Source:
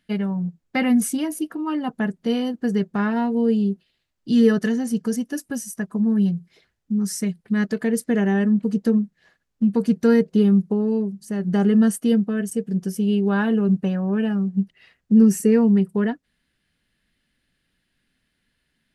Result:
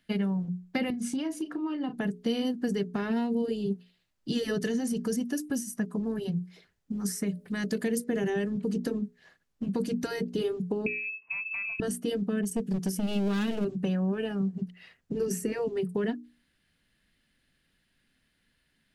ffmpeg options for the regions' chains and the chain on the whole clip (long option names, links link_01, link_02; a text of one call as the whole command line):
ffmpeg -i in.wav -filter_complex "[0:a]asettb=1/sr,asplit=3[link_01][link_02][link_03];[link_01]atrim=end=0.904[link_04];[link_02]atrim=start=0.9:end=1.98,asetpts=PTS-STARTPTS,afade=type=in:duration=0.004:curve=qsin,afade=type=out:start_time=1.076:duration=0.004:curve=qsin,lowpass=5800,asplit=2[link_05][link_06];[link_06]adelay=34,volume=-12dB[link_07];[link_05][link_07]amix=inputs=2:normalize=0,atrim=end_sample=47628,acompressor=threshold=-27dB:ratio=4:attack=3.2:release=140:knee=1:detection=peak[link_08];[link_03]atrim=start=1.976[link_09];[link_04][link_08]acrossfade=duration=0.004:curve1=hsin:curve2=qsin[link_10];[link_10][link_09]acrossfade=duration=0.004:curve1=qsin:curve2=hsin,asettb=1/sr,asplit=3[link_11][link_12][link_13];[link_11]atrim=end=6.924[link_14];[link_12]atrim=start=6.92:end=8.3,asetpts=PTS-STARTPTS,afade=type=in:duration=0.004:curve=qsin,afade=type=out:start_time=1.376:duration=0.004:curve=qsin,highshelf=frequency=7300:gain=9.5,bandreject=frequency=60:width_type=h:width=6,bandreject=frequency=120:width_type=h:width=6,bandreject=frequency=180:width_type=h:width=6,bandreject=frequency=240:width_type=h:width=6,bandreject=frequency=300:width_type=h:width=6,bandreject=frequency=360:width_type=h:width=6,bandreject=frequency=420:width_type=h:width=6,bandreject=frequency=480:width_type=h:width=6,bandreject=frequency=540:width_type=h:width=6,bandreject=frequency=600:width_type=h:width=6[link_15];[link_13]atrim=start=8.296[link_16];[link_14][link_15]acrossfade=duration=0.004:curve1=hsin:curve2=qsin[link_17];[link_17][link_16]acrossfade=duration=0.004:curve1=qsin:curve2=hsin,asettb=1/sr,asplit=3[link_18][link_19][link_20];[link_18]atrim=end=10.864[link_21];[link_19]atrim=start=10.86:end=11.8,asetpts=PTS-STARTPTS,afade=type=in:duration=0.004:curve=qsin,afade=type=out:start_time=0.936:duration=0.004:curve=qsin,lowpass=frequency=2400:width_type=q:width=0.5098,lowpass=frequency=2400:width_type=q:width=0.6013,lowpass=frequency=2400:width_type=q:width=0.9,lowpass=frequency=2400:width_type=q:width=2.563,afreqshift=-2800,acompressor=threshold=-20dB:ratio=6:attack=3.2:release=140:knee=1:detection=peak,asplit=2[link_22][link_23];[link_23]adelay=23,volume=-12.5dB[link_24];[link_22][link_24]amix=inputs=2:normalize=0,atrim=end_sample=41454[link_25];[link_20]atrim=start=11.796[link_26];[link_21][link_25]acrossfade=duration=0.004:curve1=hsin:curve2=qsin[link_27];[link_27][link_26]acrossfade=duration=0.004:curve1=qsin:curve2=hsin,asettb=1/sr,asplit=3[link_28][link_29][link_30];[link_28]atrim=end=12.414[link_31];[link_29]atrim=start=12.41:end=13.65,asetpts=PTS-STARTPTS,afade=type=in:duration=0.004:curve=qsin,afade=type=out:start_time=1.236:duration=0.004:curve=qsin,aeval=exprs='clip(val(0),-1,0.0794)':channel_layout=same,adynamicequalizer=threshold=0.00794:dfrequency=2400:dqfactor=0.7:tfrequency=2400:tqfactor=0.7:attack=5:release=100:ratio=0.375:range=2.5:mode=boostabove:tftype=highshelf[link_32];[link_30]atrim=start=13.646[link_33];[link_31][link_32]acrossfade=duration=0.004:curve1=hsin:curve2=qsin[link_34];[link_34][link_33]acrossfade=duration=0.004:curve1=qsin:curve2=hsin,bandreject=frequency=60:width_type=h:width=6,bandreject=frequency=120:width_type=h:width=6,bandreject=frequency=180:width_type=h:width=6,bandreject=frequency=240:width_type=h:width=6,bandreject=frequency=300:width_type=h:width=6,bandreject=frequency=360:width_type=h:width=6,bandreject=frequency=420:width_type=h:width=6,afftfilt=real='re*lt(hypot(re,im),1)':imag='im*lt(hypot(re,im),1)':win_size=1024:overlap=0.75,acrossover=split=540|2400[link_35][link_36][link_37];[link_35]acompressor=threshold=-26dB:ratio=4[link_38];[link_36]acompressor=threshold=-44dB:ratio=4[link_39];[link_37]acompressor=threshold=-37dB:ratio=4[link_40];[link_38][link_39][link_40]amix=inputs=3:normalize=0" out.wav